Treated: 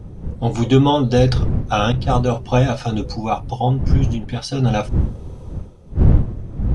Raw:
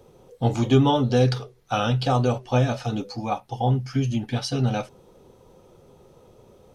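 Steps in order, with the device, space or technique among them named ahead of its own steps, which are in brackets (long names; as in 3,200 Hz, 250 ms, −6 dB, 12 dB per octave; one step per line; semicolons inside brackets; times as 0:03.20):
0:01.92–0:02.32: downward expander −17 dBFS
smartphone video outdoors (wind on the microphone 110 Hz −22 dBFS; automatic gain control gain up to 10.5 dB; level −1 dB; AAC 96 kbit/s 24,000 Hz)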